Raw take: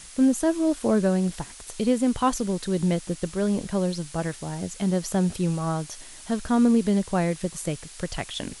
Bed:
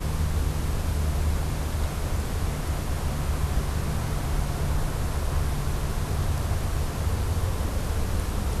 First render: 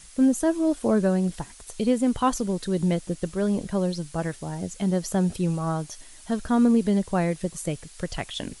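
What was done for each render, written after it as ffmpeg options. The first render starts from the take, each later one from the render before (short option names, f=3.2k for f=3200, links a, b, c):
-af "afftdn=nr=6:nf=-44"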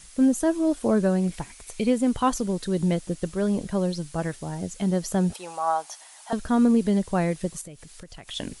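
-filter_complex "[0:a]asettb=1/sr,asplit=3[a][b][c];[a]atrim=end=1.214[d];[b]atrim=start=1.21:end=1.9,asetpts=PTS-STARTPTS,afade=t=in:d=0.004:c=qsin,afade=t=out:st=0.686:d=0.004:c=qsin,equalizer=f=2.3k:w=6:g=10.5[e];[c]atrim=start=1.896[f];[d][e]acrossfade=d=0.004:c1=hsin:c2=qsin[g];[g][f]acrossfade=d=0.004:c1=qsin:c2=hsin,asettb=1/sr,asplit=3[h][i][j];[h]atrim=end=5.334[k];[i]atrim=start=5.33:end=6.33,asetpts=PTS-STARTPTS,afade=t=in:d=0.004:c=qsin,afade=t=out:st=0.996:d=0.004:c=qsin,highpass=f=800:t=q:w=3.3[l];[j]atrim=start=6.326[m];[k][l]acrossfade=d=0.004:c1=hsin:c2=qsin[n];[n][m]acrossfade=d=0.004:c1=qsin:c2=hsin,asettb=1/sr,asplit=3[o][p][q];[o]atrim=end=7.614[r];[p]atrim=start=7.61:end=8.28,asetpts=PTS-STARTPTS,afade=t=in:d=0.004:c=qsin,afade=t=out:st=0.666:d=0.004:c=qsin,acompressor=threshold=-41dB:ratio=4:attack=3.2:release=140:knee=1:detection=peak[s];[q]atrim=start=8.276[t];[r][s]acrossfade=d=0.004:c1=hsin:c2=qsin[u];[u][t]acrossfade=d=0.004:c1=qsin:c2=hsin"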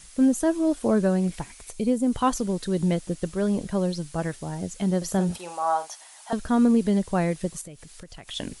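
-filter_complex "[0:a]asplit=3[a][b][c];[a]afade=t=out:st=1.71:d=0.02[d];[b]equalizer=f=2.1k:t=o:w=2.4:g=-10,afade=t=in:st=1.71:d=0.02,afade=t=out:st=2.11:d=0.02[e];[c]afade=t=in:st=2.11:d=0.02[f];[d][e][f]amix=inputs=3:normalize=0,asettb=1/sr,asplit=3[g][h][i];[g]atrim=end=4.974[j];[h]atrim=start=4.97:end=5.88,asetpts=PTS-STARTPTS,afade=t=in:d=0.004:c=qsin,afade=t=out:st=0.906:d=0.004:c=qsin,asplit=2[k][l];[l]adelay=46,volume=-10dB[m];[k][m]amix=inputs=2:normalize=0,atrim=end_sample=40131[n];[i]atrim=start=5.876[o];[j][n]acrossfade=d=0.004:c1=hsin:c2=qsin[p];[p][o]acrossfade=d=0.004:c1=qsin:c2=hsin"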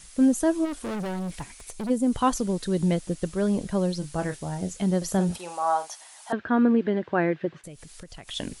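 -filter_complex "[0:a]asplit=3[a][b][c];[a]afade=t=out:st=0.64:d=0.02[d];[b]volume=29dB,asoftclip=hard,volume=-29dB,afade=t=in:st=0.64:d=0.02,afade=t=out:st=1.89:d=0.02[e];[c]afade=t=in:st=1.89:d=0.02[f];[d][e][f]amix=inputs=3:normalize=0,asettb=1/sr,asplit=3[g][h][i];[g]atrim=end=3.994[j];[h]atrim=start=3.99:end=4.81,asetpts=PTS-STARTPTS,afade=t=in:d=0.004:c=qsin,afade=t=out:st=0.816:d=0.004:c=qsin,asplit=2[k][l];[l]adelay=27,volume=-9dB[m];[k][m]amix=inputs=2:normalize=0,atrim=end_sample=36162[n];[i]atrim=start=4.806[o];[j][n]acrossfade=d=0.004:c1=hsin:c2=qsin[p];[p][o]acrossfade=d=0.004:c1=qsin:c2=hsin,asettb=1/sr,asplit=3[q][r][s];[q]atrim=end=6.324[t];[r]atrim=start=6.32:end=7.64,asetpts=PTS-STARTPTS,afade=t=in:d=0.004:c=qsin,afade=t=out:st=1.316:d=0.004:c=qsin,highpass=f=110:w=0.5412,highpass=f=110:w=1.3066,equalizer=f=190:t=q:w=4:g=-8,equalizer=f=340:t=q:w=4:g=6,equalizer=f=1.6k:t=q:w=4:g=9,lowpass=f=3.1k:w=0.5412,lowpass=f=3.1k:w=1.3066[u];[s]atrim=start=7.636[v];[t][u]acrossfade=d=0.004:c1=hsin:c2=qsin[w];[w][v]acrossfade=d=0.004:c1=qsin:c2=hsin"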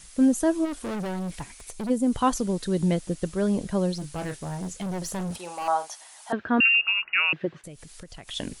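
-filter_complex "[0:a]asettb=1/sr,asplit=3[a][b][c];[a]atrim=end=3.964[d];[b]atrim=start=3.96:end=5.68,asetpts=PTS-STARTPTS,afade=t=in:d=0.004:c=qsin,afade=t=out:st=1.716:d=0.004:c=qsin,asoftclip=type=hard:threshold=-28.5dB[e];[c]atrim=start=5.676[f];[d][e]acrossfade=d=0.004:c1=hsin:c2=qsin[g];[g][f]acrossfade=d=0.004:c1=qsin:c2=hsin,asettb=1/sr,asplit=3[h][i][j];[h]atrim=end=6.604[k];[i]atrim=start=6.6:end=7.33,asetpts=PTS-STARTPTS,afade=t=in:d=0.004:c=qsin,afade=t=out:st=0.726:d=0.004:c=qsin,lowpass=f=2.6k:t=q:w=0.5098,lowpass=f=2.6k:t=q:w=0.6013,lowpass=f=2.6k:t=q:w=0.9,lowpass=f=2.6k:t=q:w=2.563,afreqshift=-3000[l];[j]atrim=start=7.326[m];[k][l]acrossfade=d=0.004:c1=hsin:c2=qsin[n];[n][m]acrossfade=d=0.004:c1=qsin:c2=hsin"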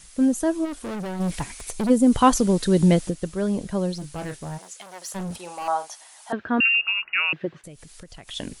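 -filter_complex "[0:a]asplit=3[a][b][c];[a]afade=t=out:st=1.19:d=0.02[d];[b]acontrast=81,afade=t=in:st=1.19:d=0.02,afade=t=out:st=3.09:d=0.02[e];[c]afade=t=in:st=3.09:d=0.02[f];[d][e][f]amix=inputs=3:normalize=0,asplit=3[g][h][i];[g]afade=t=out:st=4.57:d=0.02[j];[h]highpass=780,afade=t=in:st=4.57:d=0.02,afade=t=out:st=5.14:d=0.02[k];[i]afade=t=in:st=5.14:d=0.02[l];[j][k][l]amix=inputs=3:normalize=0"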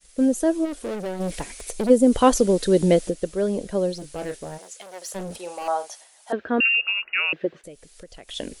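-af "agate=range=-33dB:threshold=-42dB:ratio=3:detection=peak,equalizer=f=125:t=o:w=1:g=-11,equalizer=f=500:t=o:w=1:g=8,equalizer=f=1k:t=o:w=1:g=-5"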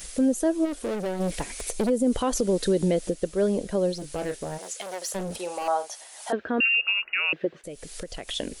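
-af "acompressor=mode=upward:threshold=-27dB:ratio=2.5,alimiter=limit=-15dB:level=0:latency=1:release=141"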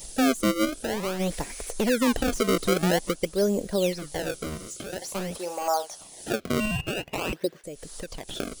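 -filter_complex "[0:a]acrossover=split=2700[a][b];[a]acrusher=samples=29:mix=1:aa=0.000001:lfo=1:lforange=46.4:lforate=0.49[c];[b]asoftclip=type=tanh:threshold=-33dB[d];[c][d]amix=inputs=2:normalize=0"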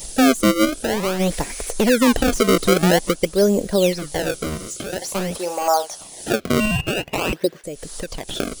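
-af "volume=7.5dB"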